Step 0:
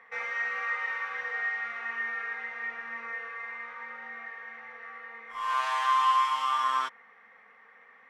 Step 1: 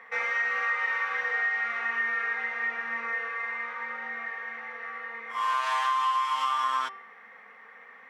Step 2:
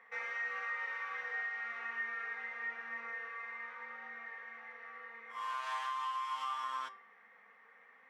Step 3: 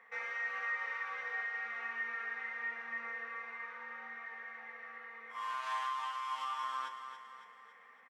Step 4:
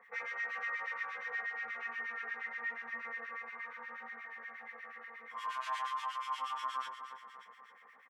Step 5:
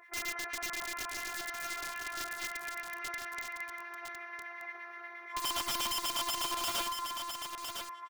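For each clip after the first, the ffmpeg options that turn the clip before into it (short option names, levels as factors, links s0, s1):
-af "highpass=f=130:w=0.5412,highpass=f=130:w=1.3066,bandreject=f=388.8:t=h:w=4,bandreject=f=777.6:t=h:w=4,bandreject=f=1166.4:t=h:w=4,bandreject=f=1555.2:t=h:w=4,bandreject=f=1944:t=h:w=4,bandreject=f=2332.8:t=h:w=4,bandreject=f=2721.6:t=h:w=4,bandreject=f=3110.4:t=h:w=4,bandreject=f=3499.2:t=h:w=4,bandreject=f=3888:t=h:w=4,bandreject=f=4276.8:t=h:w=4,bandreject=f=4665.6:t=h:w=4,bandreject=f=5054.4:t=h:w=4,bandreject=f=5443.2:t=h:w=4,bandreject=f=5832:t=h:w=4,acompressor=threshold=0.0316:ratio=6,volume=2"
-af "flanger=delay=9.4:depth=3:regen=79:speed=0.29:shape=triangular,volume=0.447"
-af "aecho=1:1:279|558|837|1116|1395|1674:0.355|0.174|0.0852|0.0417|0.0205|0.01"
-filter_complex "[0:a]acrossover=split=1500[s0][s1];[s0]aeval=exprs='val(0)*(1-1/2+1/2*cos(2*PI*8.4*n/s))':c=same[s2];[s1]aeval=exprs='val(0)*(1-1/2-1/2*cos(2*PI*8.4*n/s))':c=same[s3];[s2][s3]amix=inputs=2:normalize=0,volume=1.78"
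-af "afftfilt=real='hypot(re,im)*cos(PI*b)':imag='0':win_size=512:overlap=0.75,aeval=exprs='(mod(75*val(0)+1,2)-1)/75':c=same,aecho=1:1:1007:0.473,volume=2.66"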